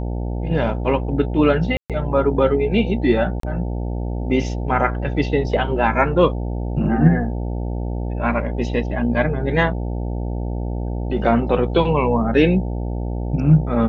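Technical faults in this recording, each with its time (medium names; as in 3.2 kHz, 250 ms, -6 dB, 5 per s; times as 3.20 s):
buzz 60 Hz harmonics 15 -24 dBFS
1.77–1.90 s: dropout 127 ms
3.40–3.43 s: dropout 33 ms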